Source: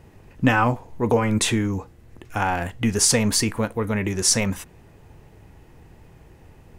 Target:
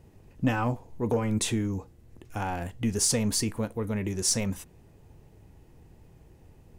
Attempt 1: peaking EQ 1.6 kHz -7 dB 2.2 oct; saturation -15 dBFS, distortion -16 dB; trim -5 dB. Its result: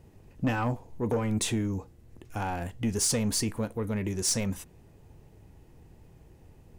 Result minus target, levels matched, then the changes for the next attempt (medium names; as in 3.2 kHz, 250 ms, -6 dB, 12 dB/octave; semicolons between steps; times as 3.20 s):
saturation: distortion +9 dB
change: saturation -8.5 dBFS, distortion -25 dB